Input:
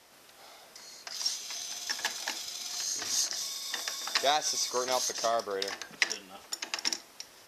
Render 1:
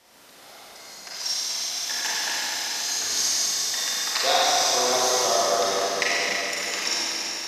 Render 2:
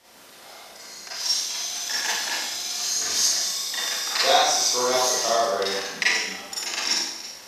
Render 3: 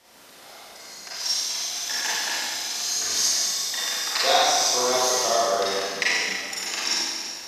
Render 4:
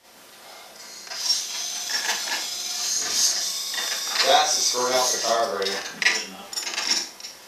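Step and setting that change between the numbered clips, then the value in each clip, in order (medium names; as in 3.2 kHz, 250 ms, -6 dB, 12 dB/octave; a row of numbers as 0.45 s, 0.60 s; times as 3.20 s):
Schroeder reverb, RT60: 4.2 s, 0.86 s, 1.8 s, 0.36 s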